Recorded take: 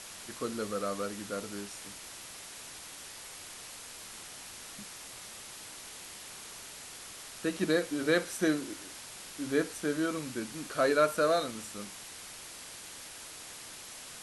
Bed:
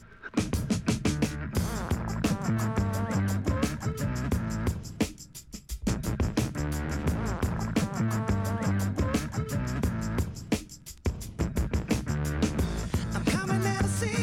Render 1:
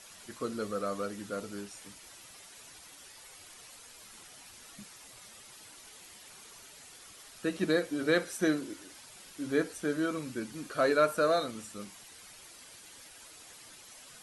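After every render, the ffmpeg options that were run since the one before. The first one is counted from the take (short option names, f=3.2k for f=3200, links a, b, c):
-af "afftdn=nr=9:nf=-47"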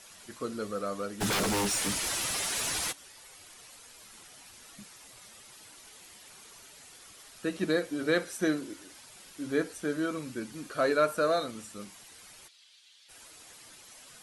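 -filter_complex "[0:a]asplit=3[a][b][c];[a]afade=t=out:st=1.2:d=0.02[d];[b]aeval=exprs='0.0562*sin(PI/2*7.08*val(0)/0.0562)':c=same,afade=t=in:st=1.2:d=0.02,afade=t=out:st=2.91:d=0.02[e];[c]afade=t=in:st=2.91:d=0.02[f];[d][e][f]amix=inputs=3:normalize=0,asplit=3[g][h][i];[g]afade=t=out:st=12.47:d=0.02[j];[h]bandpass=f=3.6k:t=q:w=2.3,afade=t=in:st=12.47:d=0.02,afade=t=out:st=13.08:d=0.02[k];[i]afade=t=in:st=13.08:d=0.02[l];[j][k][l]amix=inputs=3:normalize=0"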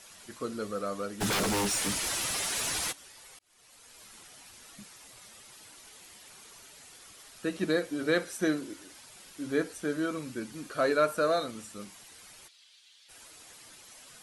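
-filter_complex "[0:a]asplit=2[a][b];[a]atrim=end=3.39,asetpts=PTS-STARTPTS,afade=t=out:st=3.386:d=0.004:c=hsin[c];[b]atrim=start=3.39,asetpts=PTS-STARTPTS,afade=t=in:d=0.63[d];[c][d]concat=n=2:v=0:a=1"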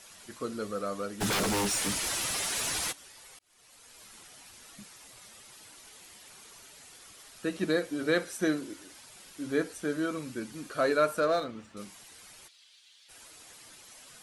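-filter_complex "[0:a]asettb=1/sr,asplit=3[a][b][c];[a]atrim=end=11.204[d];[b]atrim=start=11.2:end=11.77,asetpts=PTS-STARTPTS,afade=t=in:d=0.004:c=qsin,afade=t=out:st=0.566:d=0.004:c=qsin,adynamicsmooth=sensitivity=7:basefreq=2.8k[e];[c]atrim=start=11.766[f];[d][e]acrossfade=d=0.004:c1=hsin:c2=qsin[g];[g][f]acrossfade=d=0.004:c1=qsin:c2=hsin"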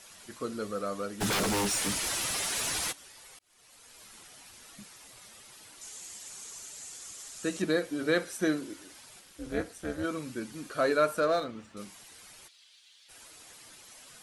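-filter_complex "[0:a]asettb=1/sr,asplit=3[a][b][c];[a]atrim=end=5.814[d];[b]atrim=start=5.81:end=7.62,asetpts=PTS-STARTPTS,afade=t=in:d=0.004:c=qsin,afade=t=out:st=1.806:d=0.004:c=qsin,equalizer=f=7.1k:w=1.5:g=13[e];[c]atrim=start=7.616[f];[d][e]acrossfade=d=0.004:c1=hsin:c2=qsin[g];[g][f]acrossfade=d=0.004:c1=qsin:c2=hsin,asplit=3[h][i][j];[h]afade=t=out:st=9.19:d=0.02[k];[i]tremolo=f=230:d=0.857,afade=t=in:st=9.19:d=0.02,afade=t=out:st=10.03:d=0.02[l];[j]afade=t=in:st=10.03:d=0.02[m];[k][l][m]amix=inputs=3:normalize=0"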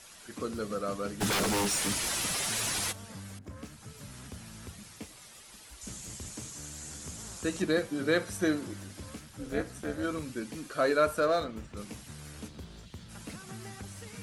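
-filter_complex "[1:a]volume=-17.5dB[a];[0:a][a]amix=inputs=2:normalize=0"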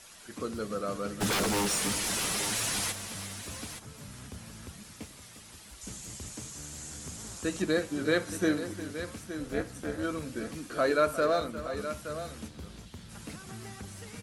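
-af "aecho=1:1:354|870:0.211|0.282"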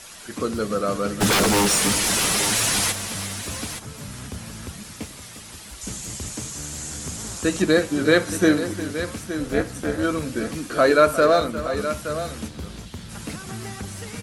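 -af "volume=10dB"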